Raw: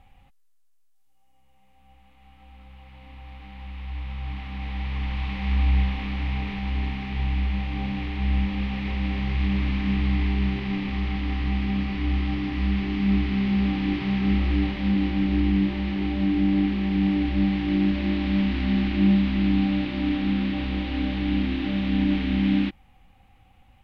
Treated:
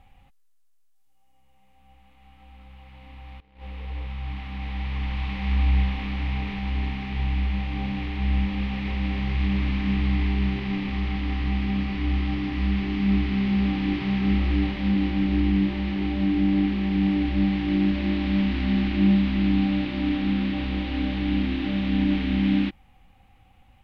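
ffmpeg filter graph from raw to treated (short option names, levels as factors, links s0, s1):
-filter_complex "[0:a]asettb=1/sr,asplit=3[s0][s1][s2];[s0]atrim=end=3.404[s3];[s1]atrim=start=3.4:end=4.07,asetpts=PTS-STARTPTS,afade=t=in:d=0.004:c=qsin,afade=t=out:st=0.666:d=0.004:c=qsin,equalizer=f=470:t=o:w=0.51:g=14.5,agate=range=0.1:threshold=0.0112:ratio=16:release=100:detection=peak[s4];[s2]atrim=start=4.066[s5];[s3][s4]acrossfade=d=0.004:c1=hsin:c2=qsin[s6];[s6][s5]acrossfade=d=0.004:c1=qsin:c2=hsin"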